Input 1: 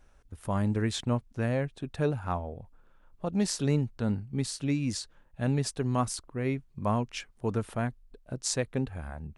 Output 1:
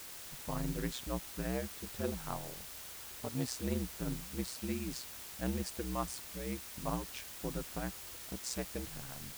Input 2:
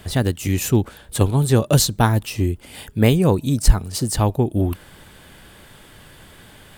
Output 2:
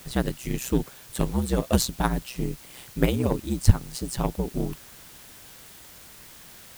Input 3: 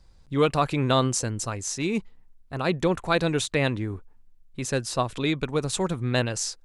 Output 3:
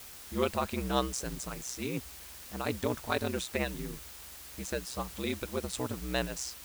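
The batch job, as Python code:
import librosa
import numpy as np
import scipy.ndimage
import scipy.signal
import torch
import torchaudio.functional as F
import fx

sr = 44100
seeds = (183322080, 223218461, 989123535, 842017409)

y = x * np.sin(2.0 * np.pi * 63.0 * np.arange(len(x)) / sr)
y = fx.cheby_harmonics(y, sr, harmonics=(3, 7), levels_db=(-17, -37), full_scale_db=-2.0)
y = fx.quant_dither(y, sr, seeds[0], bits=8, dither='triangular')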